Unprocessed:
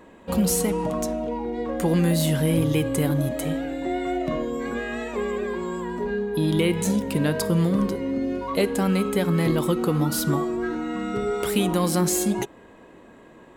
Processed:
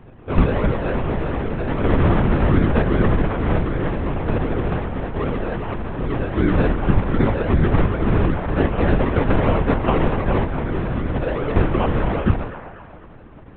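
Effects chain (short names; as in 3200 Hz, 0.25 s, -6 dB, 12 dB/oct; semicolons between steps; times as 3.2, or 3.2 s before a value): 8.34–10.41 spectral limiter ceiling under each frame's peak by 19 dB; notches 60/120/180/240/300/360/420 Hz; small resonant body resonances 250/1100 Hz, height 9 dB; decimation with a swept rate 33×, swing 60% 2.6 Hz; air absorption 470 m; band-limited delay 0.247 s, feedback 44%, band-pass 1100 Hz, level -6.5 dB; LPC vocoder at 8 kHz whisper; gain +4 dB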